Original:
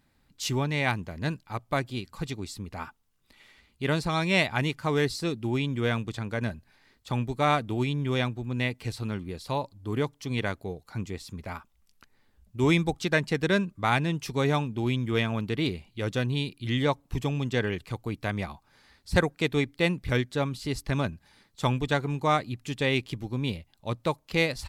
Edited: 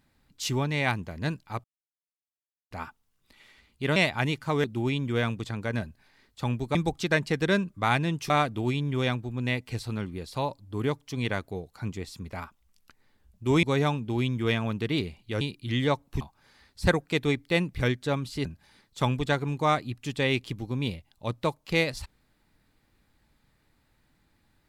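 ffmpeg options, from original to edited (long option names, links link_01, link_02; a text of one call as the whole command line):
ffmpeg -i in.wav -filter_complex "[0:a]asplit=11[link_01][link_02][link_03][link_04][link_05][link_06][link_07][link_08][link_09][link_10][link_11];[link_01]atrim=end=1.64,asetpts=PTS-STARTPTS,afade=type=out:start_time=1.636:duration=0.004:curve=hsin[link_12];[link_02]atrim=start=1.64:end=2.71,asetpts=PTS-STARTPTS,volume=0[link_13];[link_03]atrim=start=2.71:end=3.962,asetpts=PTS-STARTPTS,afade=type=in:duration=0.004:curve=hsin[link_14];[link_04]atrim=start=4.328:end=5.012[link_15];[link_05]atrim=start=5.318:end=7.432[link_16];[link_06]atrim=start=12.758:end=14.312[link_17];[link_07]atrim=start=7.428:end=12.762[link_18];[link_08]atrim=start=14.308:end=16.092[link_19];[link_09]atrim=start=16.388:end=17.192[link_20];[link_10]atrim=start=18.498:end=20.742[link_21];[link_11]atrim=start=21.068[link_22];[link_12][link_13][link_14]concat=n=3:v=0:a=1[link_23];[link_23][link_15]acrossfade=duration=0.004:curve1=hsin:curve2=hsin[link_24];[link_24][link_16]acrossfade=duration=0.004:curve1=hsin:curve2=hsin[link_25];[link_25][link_17]acrossfade=duration=0.004:curve1=hsin:curve2=hsin[link_26];[link_26][link_18]acrossfade=duration=0.004:curve1=hsin:curve2=hsin[link_27];[link_27][link_19]acrossfade=duration=0.004:curve1=hsin:curve2=hsin[link_28];[link_28][link_20]acrossfade=duration=0.004:curve1=hsin:curve2=hsin[link_29];[link_29][link_21]acrossfade=duration=0.004:curve1=hsin:curve2=hsin[link_30];[link_30][link_22]acrossfade=duration=0.004:curve1=hsin:curve2=hsin" out.wav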